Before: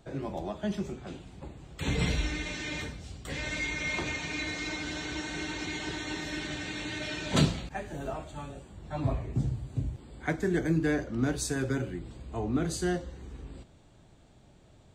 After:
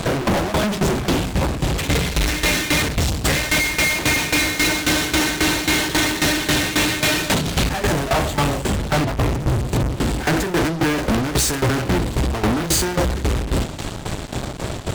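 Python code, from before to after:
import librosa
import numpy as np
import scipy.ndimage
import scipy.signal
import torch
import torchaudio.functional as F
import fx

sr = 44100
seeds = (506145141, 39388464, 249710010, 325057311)

y = fx.over_compress(x, sr, threshold_db=-31.0, ratio=-0.5)
y = fx.fuzz(y, sr, gain_db=56.0, gate_db=-57.0)
y = fx.tremolo_shape(y, sr, shape='saw_down', hz=3.7, depth_pct=80)
y = F.gain(torch.from_numpy(y), -1.5).numpy()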